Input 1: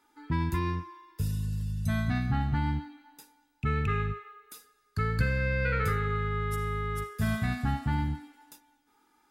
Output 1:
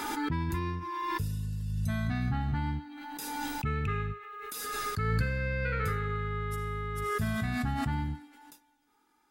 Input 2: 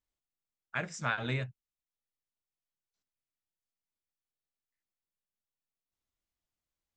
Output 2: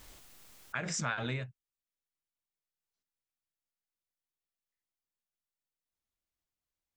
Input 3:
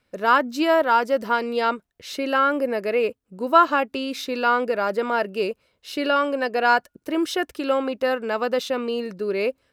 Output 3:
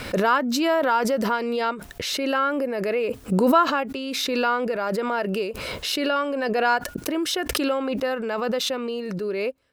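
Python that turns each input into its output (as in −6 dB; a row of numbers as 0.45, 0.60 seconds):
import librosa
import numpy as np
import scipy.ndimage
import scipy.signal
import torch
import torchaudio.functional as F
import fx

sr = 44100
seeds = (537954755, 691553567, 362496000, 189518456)

y = fx.pre_swell(x, sr, db_per_s=22.0)
y = F.gain(torch.from_numpy(y), -3.5).numpy()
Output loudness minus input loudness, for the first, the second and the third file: −2.5, −1.0, −1.5 LU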